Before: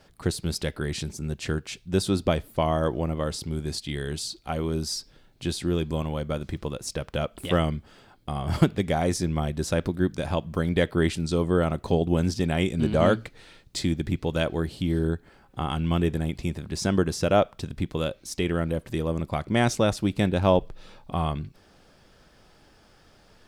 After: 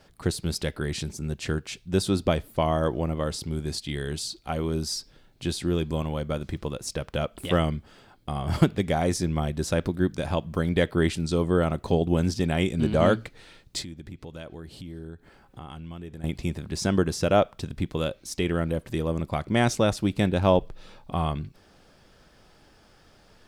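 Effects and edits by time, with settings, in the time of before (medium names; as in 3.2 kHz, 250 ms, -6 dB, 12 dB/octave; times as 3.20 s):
13.82–16.24 s: compression 3:1, threshold -41 dBFS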